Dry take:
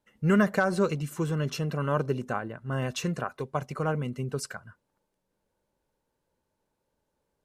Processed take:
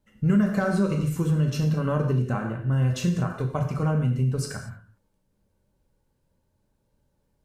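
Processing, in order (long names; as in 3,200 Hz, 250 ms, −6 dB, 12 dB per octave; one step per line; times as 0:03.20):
bass and treble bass +13 dB, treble +2 dB
reverb whose tail is shaped and stops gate 260 ms falling, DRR 2 dB
downward compressor 2.5 to 1, threshold −20 dBFS, peak gain reduction 9 dB
level −1 dB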